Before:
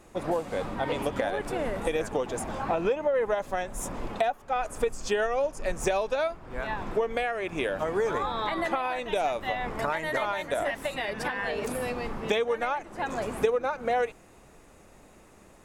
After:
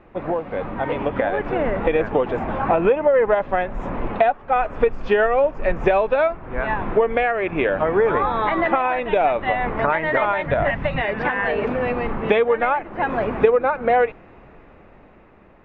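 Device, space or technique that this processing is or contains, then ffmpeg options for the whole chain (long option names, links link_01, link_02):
action camera in a waterproof case: -filter_complex "[0:a]asettb=1/sr,asplit=3[link_01][link_02][link_03];[link_01]atrim=end=10.464[link_04];[link_02]atrim=start=10.46:end=11.02,asetpts=PTS-STARTPTS,afade=type=in:duration=0.004:curve=qsin,afade=type=out:start_time=0.556:duration=0.004:curve=qsin,lowshelf=frequency=210:width_type=q:width=1.5:gain=10.5[link_05];[link_03]atrim=start=11.016[link_06];[link_04][link_05]acrossfade=duration=0.004:curve1=hsin:curve2=qsin[link_07];[link_07][link_06]acrossfade=duration=0.004:curve1=qsin:curve2=hsin,lowpass=frequency=2600:width=0.5412,lowpass=frequency=2600:width=1.3066,dynaudnorm=framelen=220:gausssize=11:maxgain=5dB,volume=4.5dB" -ar 24000 -c:a aac -b:a 64k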